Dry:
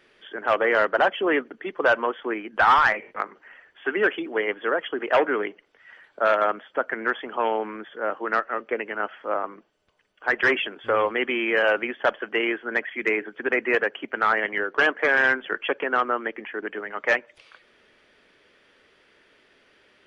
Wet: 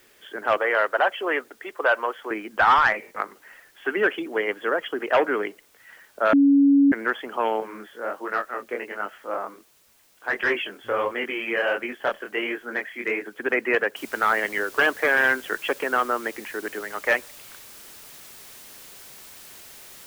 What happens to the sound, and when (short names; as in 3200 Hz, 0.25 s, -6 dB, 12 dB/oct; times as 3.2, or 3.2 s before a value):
0.57–2.31 BPF 480–3700 Hz
6.33–6.92 bleep 280 Hz -12.5 dBFS
7.6–13.26 chorus 1.4 Hz, delay 20 ms, depth 5.5 ms
13.96 noise floor step -60 dB -45 dB